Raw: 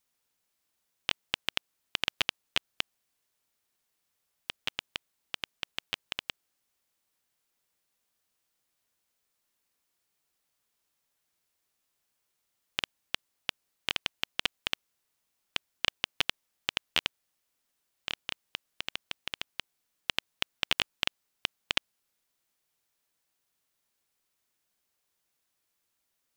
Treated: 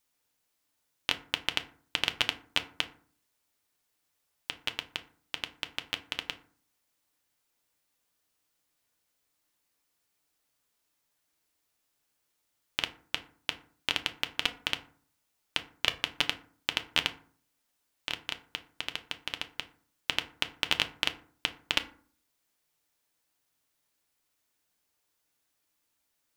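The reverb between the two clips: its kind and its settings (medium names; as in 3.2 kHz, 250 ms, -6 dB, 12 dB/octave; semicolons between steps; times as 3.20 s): FDN reverb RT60 0.48 s, low-frequency decay 1.3×, high-frequency decay 0.5×, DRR 7 dB; trim +1 dB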